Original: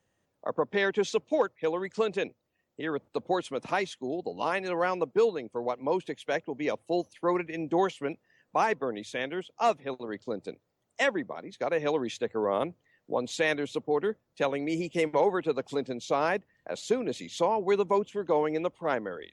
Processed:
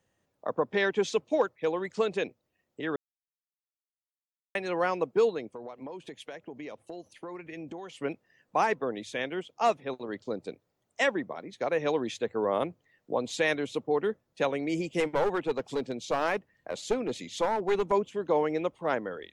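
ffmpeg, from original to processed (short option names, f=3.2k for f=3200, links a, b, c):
-filter_complex "[0:a]asettb=1/sr,asplit=3[a][b][c];[a]atrim=end=5.504[d];[b]atrim=start=5.5:end=7.95,asetpts=PTS-STARTPTS,afade=t=in:d=0.004:c=qsin,afade=t=out:st=2.446:d=0.004:c=qsin,acompressor=threshold=-37dB:ratio=10:attack=3.2:release=140:knee=1:detection=peak[e];[c]atrim=start=7.946[f];[d][e]acrossfade=d=0.004:c1=hsin:c2=qsin[g];[g][f]acrossfade=d=0.004:c1=qsin:c2=hsin,asettb=1/sr,asplit=3[h][i][j];[h]atrim=end=15.004[k];[i]atrim=start=15:end=17.92,asetpts=PTS-STARTPTS,afade=t=in:d=0.004:c=qsin,afade=t=out:st=2.916:d=0.004:c=qsin,aeval=exprs='clip(val(0),-1,0.0531)':c=same[l];[j]atrim=start=17.916[m];[k][l]acrossfade=d=0.004:c1=hsin:c2=qsin[n];[n][m]acrossfade=d=0.004:c1=qsin:c2=hsin,asplit=3[o][p][q];[o]atrim=end=2.96,asetpts=PTS-STARTPTS,afade=t=out:st=2.956:d=0.004:c=hsin[r];[p]atrim=start=2.96:end=4.55,asetpts=PTS-STARTPTS,volume=0[s];[q]atrim=start=4.55,asetpts=PTS-STARTPTS,afade=t=in:d=0.004:c=hsin[t];[r][s][t]concat=n=3:v=0:a=1"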